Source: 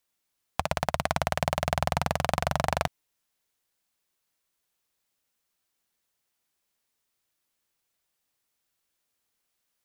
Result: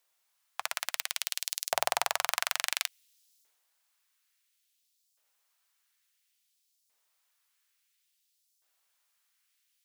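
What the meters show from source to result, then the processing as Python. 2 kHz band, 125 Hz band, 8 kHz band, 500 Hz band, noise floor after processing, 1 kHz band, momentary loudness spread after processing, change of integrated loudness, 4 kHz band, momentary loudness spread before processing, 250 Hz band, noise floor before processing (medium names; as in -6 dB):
-1.0 dB, under -30 dB, +6.0 dB, -10.5 dB, -76 dBFS, -6.5 dB, 7 LU, -2.5 dB, +3.5 dB, 5 LU, under -25 dB, -80 dBFS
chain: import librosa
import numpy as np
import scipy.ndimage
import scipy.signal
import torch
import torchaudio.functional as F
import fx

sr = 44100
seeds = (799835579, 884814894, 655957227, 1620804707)

y = fx.transient(x, sr, attack_db=-9, sustain_db=7)
y = fx.filter_lfo_highpass(y, sr, shape='saw_up', hz=0.58, low_hz=540.0, high_hz=5500.0, q=1.1)
y = y * librosa.db_to_amplitude(3.5)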